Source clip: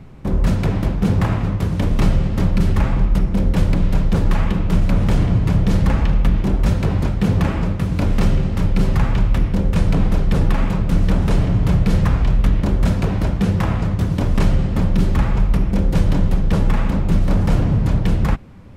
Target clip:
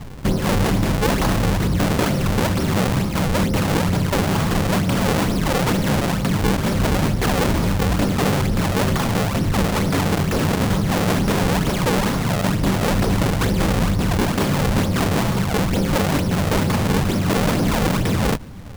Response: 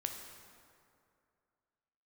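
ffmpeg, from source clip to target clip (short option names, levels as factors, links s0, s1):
-af "acrusher=samples=39:mix=1:aa=0.000001:lfo=1:lforange=62.4:lforate=2.2,afftfilt=real='re*lt(hypot(re,im),1.12)':imag='im*lt(hypot(re,im),1.12)':win_size=1024:overlap=0.75,asoftclip=type=tanh:threshold=0.141,volume=1.88"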